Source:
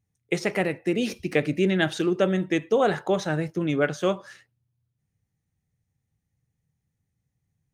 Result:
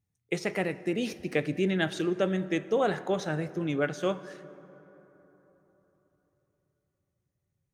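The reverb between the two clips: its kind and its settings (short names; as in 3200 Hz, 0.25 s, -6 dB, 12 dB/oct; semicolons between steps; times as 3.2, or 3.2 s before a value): plate-style reverb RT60 4.1 s, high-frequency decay 0.4×, DRR 15 dB; gain -5 dB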